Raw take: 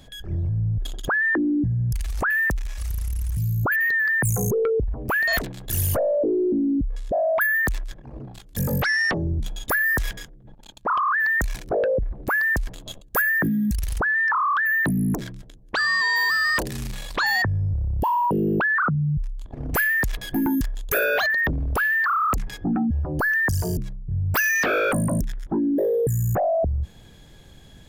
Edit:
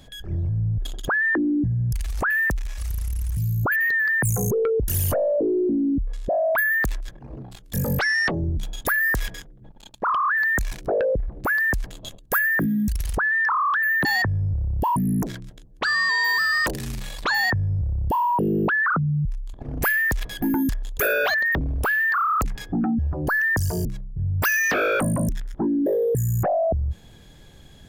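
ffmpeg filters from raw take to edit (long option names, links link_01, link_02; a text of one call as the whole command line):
ffmpeg -i in.wav -filter_complex "[0:a]asplit=4[link_01][link_02][link_03][link_04];[link_01]atrim=end=4.882[link_05];[link_02]atrim=start=5.708:end=14.882[link_06];[link_03]atrim=start=17.248:end=18.162[link_07];[link_04]atrim=start=14.878[link_08];[link_05][link_06]acrossfade=duration=0.004:curve1=hsin:curve2=hsin[link_09];[link_09][link_07]acrossfade=duration=0.004:curve1=hsin:curve2=hsin[link_10];[link_10][link_08]acrossfade=duration=0.004:curve1=hsin:curve2=hsin" out.wav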